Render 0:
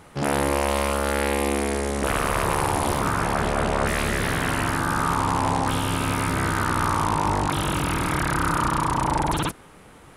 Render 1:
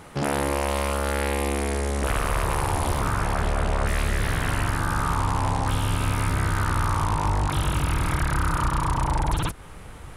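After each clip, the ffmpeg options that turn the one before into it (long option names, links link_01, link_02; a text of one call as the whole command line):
ffmpeg -i in.wav -af "asubboost=boost=4:cutoff=110,acompressor=threshold=-29dB:ratio=2,volume=3.5dB" out.wav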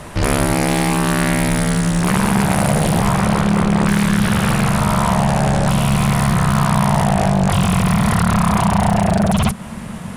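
ffmpeg -i in.wav -af "aeval=exprs='0.237*(cos(1*acos(clip(val(0)/0.237,-1,1)))-cos(1*PI/2))+0.0473*(cos(5*acos(clip(val(0)/0.237,-1,1)))-cos(5*PI/2))':channel_layout=same,afreqshift=-240,volume=5.5dB" out.wav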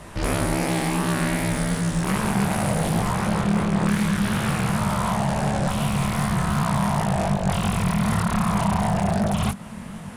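ffmpeg -i in.wav -af "flanger=delay=18:depth=7.4:speed=2.7,volume=-4dB" out.wav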